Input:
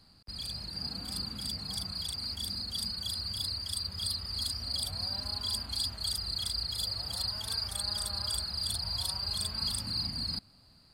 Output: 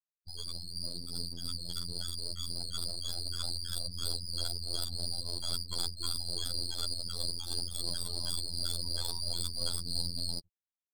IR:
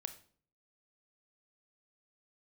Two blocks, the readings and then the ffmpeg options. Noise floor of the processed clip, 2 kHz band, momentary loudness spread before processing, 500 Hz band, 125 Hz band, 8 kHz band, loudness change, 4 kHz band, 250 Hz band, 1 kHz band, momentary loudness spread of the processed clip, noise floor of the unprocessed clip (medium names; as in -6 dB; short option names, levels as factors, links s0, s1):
under -85 dBFS, -5.5 dB, 4 LU, +3.5 dB, -1.0 dB, 0.0 dB, -2.5 dB, -3.0 dB, -1.5 dB, -4.0 dB, 5 LU, -60 dBFS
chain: -filter_complex "[0:a]asplit=2[s0][s1];[1:a]atrim=start_sample=2205,asetrate=33075,aresample=44100[s2];[s1][s2]afir=irnorm=-1:irlink=0,volume=0.841[s3];[s0][s3]amix=inputs=2:normalize=0,afftfilt=real='re*gte(hypot(re,im),0.0398)':imag='im*gte(hypot(re,im),0.0398)':win_size=1024:overlap=0.75,aeval=exprs='max(val(0),0)':c=same,afftfilt=real='hypot(re,im)*cos(PI*b)':imag='0':win_size=2048:overlap=0.75,volume=1.19"